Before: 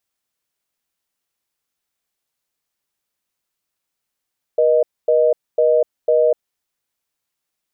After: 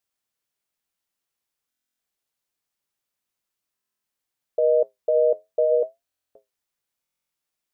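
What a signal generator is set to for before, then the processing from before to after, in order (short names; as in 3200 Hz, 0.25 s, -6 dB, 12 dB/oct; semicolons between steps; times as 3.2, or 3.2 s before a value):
call progress tone reorder tone, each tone -14 dBFS 1.94 s
flange 0.65 Hz, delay 7.4 ms, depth 3.1 ms, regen -71%; stuck buffer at 1.69/3.74/6.05/7.01, samples 1024, times 12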